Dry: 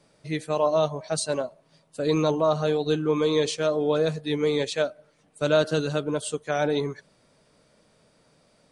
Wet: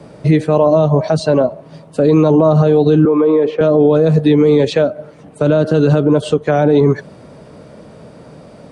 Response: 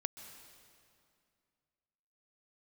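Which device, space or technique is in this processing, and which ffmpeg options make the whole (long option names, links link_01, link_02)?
mastering chain: -filter_complex "[0:a]highpass=51,equalizer=frequency=2800:width_type=o:width=0.27:gain=2,acrossover=split=310|6000[link_01][link_02][link_03];[link_01]acompressor=threshold=-30dB:ratio=4[link_04];[link_02]acompressor=threshold=-27dB:ratio=4[link_05];[link_03]acompressor=threshold=-56dB:ratio=4[link_06];[link_04][link_05][link_06]amix=inputs=3:normalize=0,acompressor=threshold=-32dB:ratio=2,tiltshelf=frequency=1500:gain=8.5,alimiter=level_in=20dB:limit=-1dB:release=50:level=0:latency=1,asettb=1/sr,asplit=3[link_07][link_08][link_09];[link_07]atrim=end=3.054[link_10];[link_08]atrim=start=3.05:end=3.61,asetpts=PTS-STARTPTS,afade=type=in:duration=0.004:curve=qsin,afade=type=out:start_time=0.556:duration=0.004:curve=qsin,acrossover=split=240 2300:gain=0.0794 1 0.0708[link_11][link_12][link_13];[link_11][link_12][link_13]amix=inputs=3:normalize=0[link_14];[link_09]atrim=start=3.606[link_15];[link_10][link_14]acrossfade=duration=0.004:curve1=hsin:curve2=qsin[link_16];[link_16][link_15]acrossfade=duration=0.004:curve1=qsin:curve2=hsin,volume=-2dB"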